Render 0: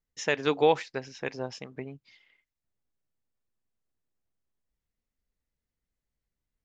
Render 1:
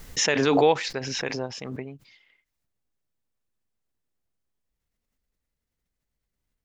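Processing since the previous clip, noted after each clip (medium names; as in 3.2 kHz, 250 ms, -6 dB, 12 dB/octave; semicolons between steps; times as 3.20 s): swell ahead of each attack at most 23 dB/s; trim +2 dB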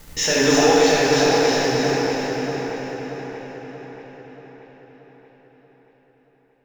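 waveshaping leveller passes 2; on a send: two-band feedback delay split 2.7 kHz, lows 631 ms, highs 323 ms, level -4 dB; on the sum: plate-style reverb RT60 3.6 s, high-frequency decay 0.75×, DRR -7 dB; trim -7 dB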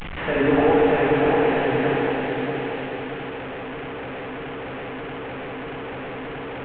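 one-bit delta coder 16 kbps, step -25 dBFS; trim -1 dB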